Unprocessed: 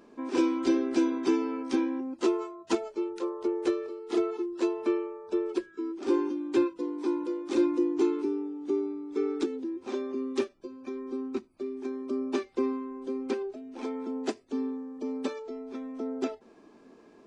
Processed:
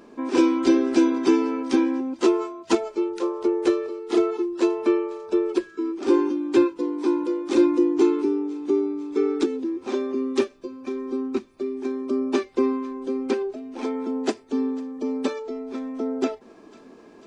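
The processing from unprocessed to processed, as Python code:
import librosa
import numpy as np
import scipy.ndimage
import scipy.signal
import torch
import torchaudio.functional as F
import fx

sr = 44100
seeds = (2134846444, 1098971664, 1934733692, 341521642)

y = fx.echo_thinned(x, sr, ms=497, feedback_pct=73, hz=1000.0, wet_db=-21.0)
y = y * librosa.db_to_amplitude(7.0)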